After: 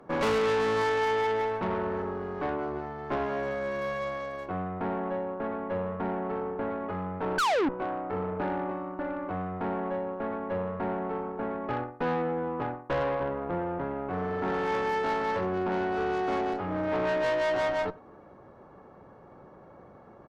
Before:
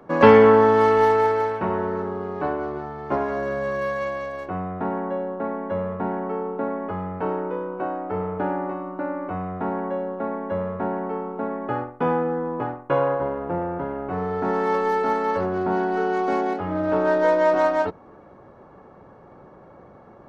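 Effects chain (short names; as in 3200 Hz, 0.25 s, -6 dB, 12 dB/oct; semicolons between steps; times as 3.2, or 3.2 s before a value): speakerphone echo 0.1 s, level -23 dB; painted sound fall, 7.38–7.69, 250–1600 Hz -11 dBFS; tube stage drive 22 dB, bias 0.5; gain -2 dB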